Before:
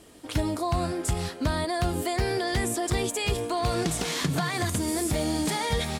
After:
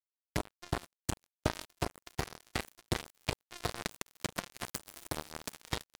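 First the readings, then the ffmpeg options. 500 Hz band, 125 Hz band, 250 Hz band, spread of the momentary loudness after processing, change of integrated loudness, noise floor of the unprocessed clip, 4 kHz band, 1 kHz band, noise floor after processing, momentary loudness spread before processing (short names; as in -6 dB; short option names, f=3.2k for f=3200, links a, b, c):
-13.5 dB, -12.5 dB, -14.5 dB, 4 LU, -12.0 dB, -42 dBFS, -10.0 dB, -12.0 dB, under -85 dBFS, 2 LU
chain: -af "acrusher=bits=2:mix=0:aa=0.5,volume=-1dB"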